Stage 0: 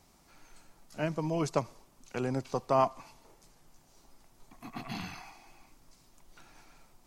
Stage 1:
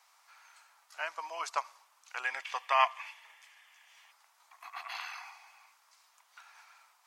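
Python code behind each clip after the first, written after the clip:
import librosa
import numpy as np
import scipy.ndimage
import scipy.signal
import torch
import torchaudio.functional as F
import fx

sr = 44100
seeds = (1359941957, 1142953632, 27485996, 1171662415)

y = scipy.signal.sosfilt(scipy.signal.butter(4, 1000.0, 'highpass', fs=sr, output='sos'), x)
y = fx.spec_box(y, sr, start_s=2.25, length_s=1.87, low_hz=1600.0, high_hz=3600.0, gain_db=12)
y = fx.high_shelf(y, sr, hz=3100.0, db=-10.0)
y = F.gain(torch.from_numpy(y), 7.0).numpy()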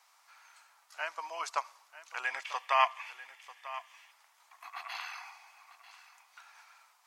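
y = x + 10.0 ** (-15.5 / 20.0) * np.pad(x, (int(943 * sr / 1000.0), 0))[:len(x)]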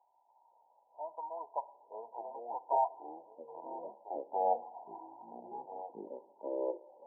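y = fx.echo_pitch(x, sr, ms=513, semitones=-6, count=3, db_per_echo=-6.0)
y = fx.brickwall_lowpass(y, sr, high_hz=1000.0)
y = fx.rev_schroeder(y, sr, rt60_s=0.68, comb_ms=30, drr_db=17.0)
y = F.gain(torch.from_numpy(y), 1.0).numpy()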